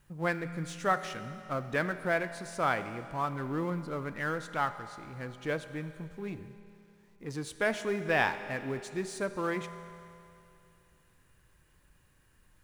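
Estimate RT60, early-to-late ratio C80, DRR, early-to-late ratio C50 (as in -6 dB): 2.7 s, 12.0 dB, 10.0 dB, 11.0 dB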